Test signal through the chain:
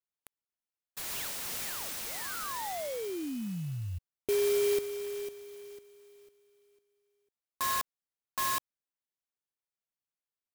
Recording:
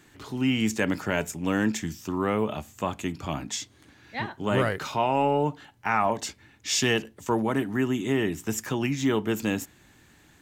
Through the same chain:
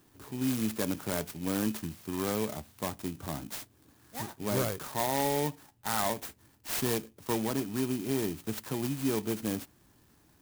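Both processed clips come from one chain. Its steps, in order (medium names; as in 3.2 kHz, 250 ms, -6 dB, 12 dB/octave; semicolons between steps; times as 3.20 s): bit-reversed sample order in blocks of 16 samples; sampling jitter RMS 0.065 ms; trim -5.5 dB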